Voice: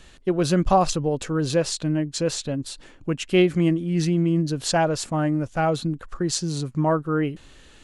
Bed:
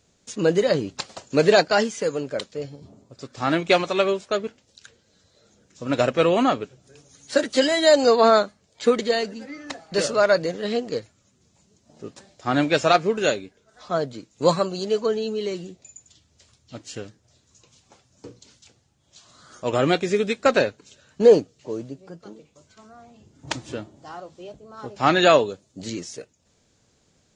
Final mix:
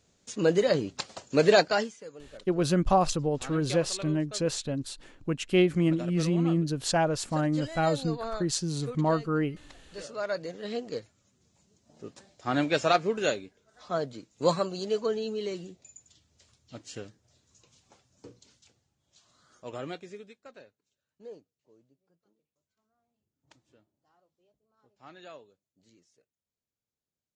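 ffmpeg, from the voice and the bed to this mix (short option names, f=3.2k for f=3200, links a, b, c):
-filter_complex "[0:a]adelay=2200,volume=-4.5dB[a];[1:a]volume=10dB,afade=t=out:st=1.65:d=0.33:silence=0.158489,afade=t=in:st=9.96:d=1.27:silence=0.199526,afade=t=out:st=17.87:d=2.54:silence=0.0501187[b];[a][b]amix=inputs=2:normalize=0"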